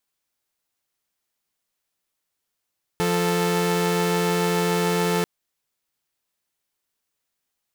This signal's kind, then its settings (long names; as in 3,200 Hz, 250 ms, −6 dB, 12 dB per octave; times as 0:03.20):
held notes F3/A4 saw, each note −20 dBFS 2.24 s